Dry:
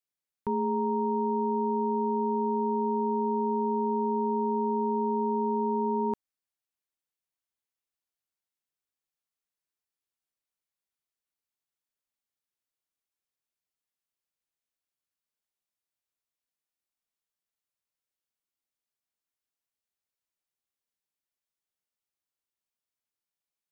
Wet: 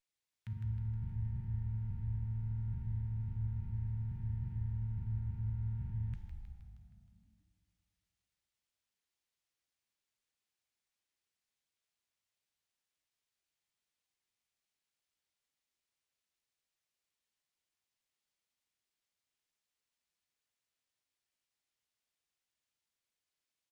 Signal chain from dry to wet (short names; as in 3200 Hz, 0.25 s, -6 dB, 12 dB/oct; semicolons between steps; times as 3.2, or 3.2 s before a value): octaver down 1 oct, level +2 dB; inverse Chebyshev band-stop 320–800 Hz, stop band 60 dB; low shelf 150 Hz -9.5 dB; limiter -36.5 dBFS, peak gain reduction 3.5 dB; soft clip -29 dBFS, distortion -37 dB; frequency-shifting echo 0.157 s, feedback 58%, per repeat -41 Hz, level -6 dB; reverb RT60 2.5 s, pre-delay 5 ms, DRR 5.5 dB; running maximum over 3 samples; gain +1 dB